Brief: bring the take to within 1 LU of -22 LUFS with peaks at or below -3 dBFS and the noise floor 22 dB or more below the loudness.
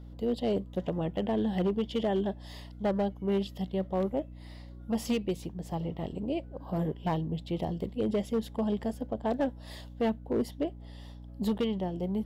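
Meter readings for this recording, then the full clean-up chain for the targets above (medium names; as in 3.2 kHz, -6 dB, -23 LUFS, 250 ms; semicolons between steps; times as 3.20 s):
clipped samples 1.3%; clipping level -22.5 dBFS; hum 60 Hz; highest harmonic 300 Hz; hum level -44 dBFS; loudness -32.0 LUFS; peak level -22.5 dBFS; loudness target -22.0 LUFS
-> clip repair -22.5 dBFS; hum notches 60/120/180/240/300 Hz; trim +10 dB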